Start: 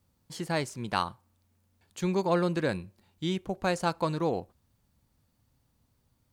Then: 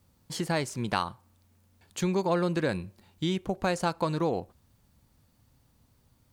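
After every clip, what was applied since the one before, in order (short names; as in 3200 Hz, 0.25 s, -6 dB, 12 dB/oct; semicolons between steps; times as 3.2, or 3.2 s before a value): compressor 2:1, threshold -34 dBFS, peak gain reduction 7.5 dB; gain +6 dB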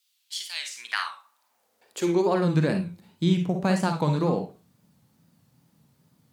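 high-pass sweep 3200 Hz -> 160 Hz, 0.52–2.59; Schroeder reverb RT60 0.31 s, DRR 5 dB; wow and flutter 110 cents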